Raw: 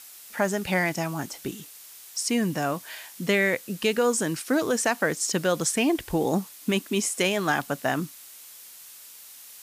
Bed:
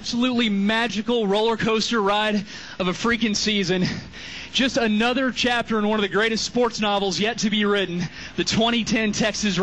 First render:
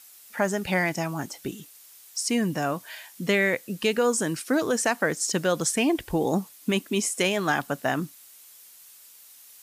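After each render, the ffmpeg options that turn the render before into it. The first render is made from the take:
-af "afftdn=nr=6:nf=-47"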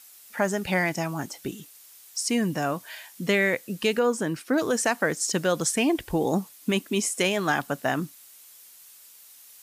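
-filter_complex "[0:a]asettb=1/sr,asplit=3[s0][s1][s2];[s0]atrim=end=3.994[s3];[s1]atrim=start=3.99:end=4.58,asetpts=PTS-STARTPTS,afade=t=in:d=0.004:c=qsin,afade=t=out:st=0.586:d=0.004:c=qsin,equalizer=f=8500:t=o:w=2:g=-9.5[s4];[s2]atrim=start=4.576[s5];[s3][s4]acrossfade=d=0.004:c1=hsin:c2=qsin[s6];[s6][s5]acrossfade=d=0.004:c1=qsin:c2=hsin"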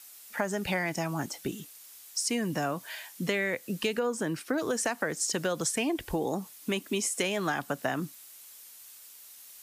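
-filter_complex "[0:a]acrossover=split=300|740|6500[s0][s1][s2][s3];[s0]alimiter=level_in=1.5:limit=0.0631:level=0:latency=1,volume=0.668[s4];[s4][s1][s2][s3]amix=inputs=4:normalize=0,acompressor=threshold=0.0501:ratio=6"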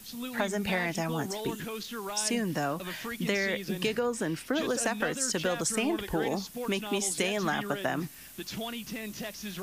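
-filter_complex "[1:a]volume=0.141[s0];[0:a][s0]amix=inputs=2:normalize=0"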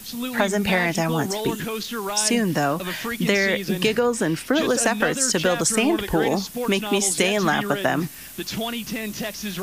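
-af "volume=2.82"

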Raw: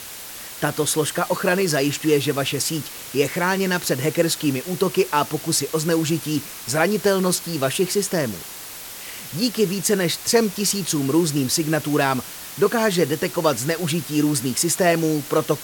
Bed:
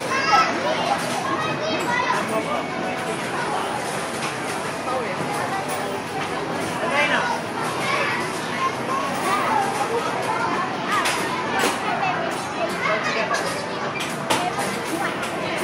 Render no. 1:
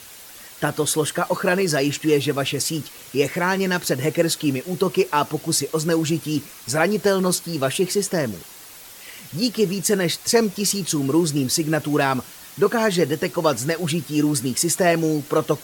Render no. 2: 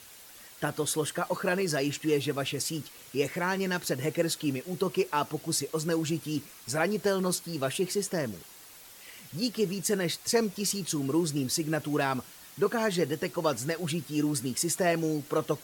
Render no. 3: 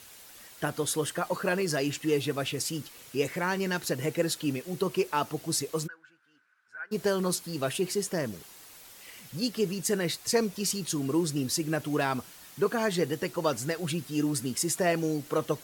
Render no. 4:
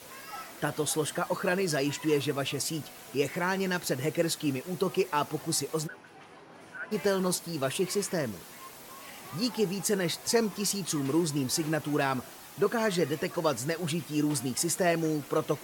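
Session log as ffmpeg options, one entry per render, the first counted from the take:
-af "afftdn=nr=7:nf=-36"
-af "volume=0.376"
-filter_complex "[0:a]asplit=3[s0][s1][s2];[s0]afade=t=out:st=5.86:d=0.02[s3];[s1]bandpass=f=1500:t=q:w=15,afade=t=in:st=5.86:d=0.02,afade=t=out:st=6.91:d=0.02[s4];[s2]afade=t=in:st=6.91:d=0.02[s5];[s3][s4][s5]amix=inputs=3:normalize=0"
-filter_complex "[1:a]volume=0.0531[s0];[0:a][s0]amix=inputs=2:normalize=0"

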